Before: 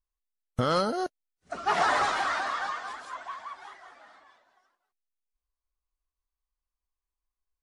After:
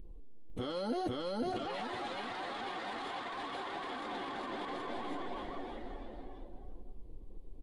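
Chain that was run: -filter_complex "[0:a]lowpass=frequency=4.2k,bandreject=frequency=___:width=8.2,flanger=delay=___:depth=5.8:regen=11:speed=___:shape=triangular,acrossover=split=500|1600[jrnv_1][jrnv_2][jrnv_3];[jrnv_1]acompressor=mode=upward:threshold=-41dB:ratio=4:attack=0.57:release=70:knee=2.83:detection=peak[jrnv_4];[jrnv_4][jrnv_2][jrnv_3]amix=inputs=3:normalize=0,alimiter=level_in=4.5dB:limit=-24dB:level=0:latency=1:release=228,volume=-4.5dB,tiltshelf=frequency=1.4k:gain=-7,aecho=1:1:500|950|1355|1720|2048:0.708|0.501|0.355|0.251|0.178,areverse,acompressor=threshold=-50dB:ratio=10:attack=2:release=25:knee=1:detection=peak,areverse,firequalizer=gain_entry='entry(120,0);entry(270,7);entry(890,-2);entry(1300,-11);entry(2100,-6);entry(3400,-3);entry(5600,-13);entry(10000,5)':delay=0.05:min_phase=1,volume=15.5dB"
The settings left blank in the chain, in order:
630, 5.1, 0.83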